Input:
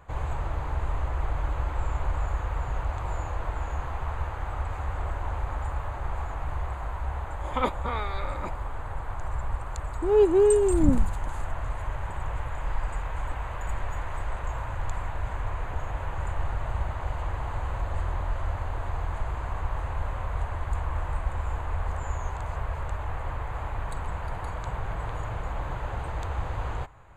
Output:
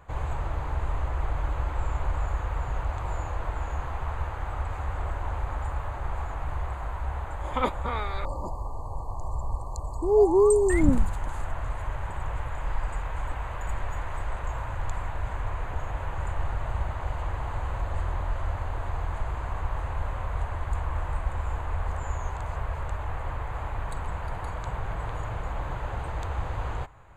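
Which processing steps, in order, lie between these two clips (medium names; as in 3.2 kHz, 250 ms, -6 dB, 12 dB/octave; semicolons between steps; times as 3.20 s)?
10.17–10.81 s: painted sound rise 650–2200 Hz -33 dBFS; 8.25–10.70 s: brick-wall FIR band-stop 1.2–4.1 kHz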